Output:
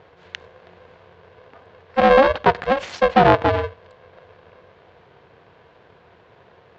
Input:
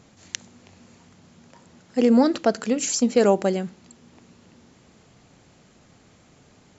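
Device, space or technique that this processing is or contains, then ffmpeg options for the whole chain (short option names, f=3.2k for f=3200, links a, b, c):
ring modulator pedal into a guitar cabinet: -af "aeval=exprs='val(0)*sgn(sin(2*PI*270*n/s))':c=same,highpass=87,equalizer=f=90:t=q:w=4:g=7,equalizer=f=480:t=q:w=4:g=5,equalizer=f=700:t=q:w=4:g=6,equalizer=f=1k:t=q:w=4:g=4,equalizer=f=1.6k:t=q:w=4:g=5,lowpass=f=3.6k:w=0.5412,lowpass=f=3.6k:w=1.3066,volume=1dB"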